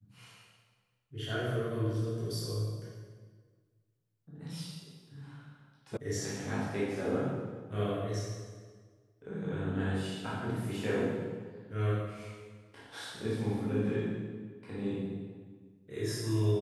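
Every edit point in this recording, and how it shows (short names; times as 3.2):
5.97 sound cut off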